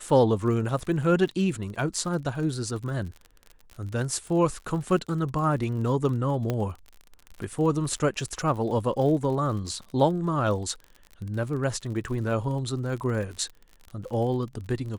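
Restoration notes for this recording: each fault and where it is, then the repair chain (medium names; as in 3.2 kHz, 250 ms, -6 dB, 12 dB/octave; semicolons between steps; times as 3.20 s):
crackle 48 per s -35 dBFS
6.50 s: pop -15 dBFS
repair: de-click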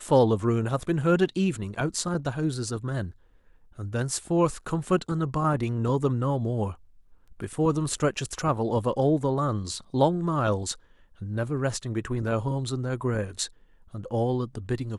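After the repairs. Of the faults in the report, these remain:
6.50 s: pop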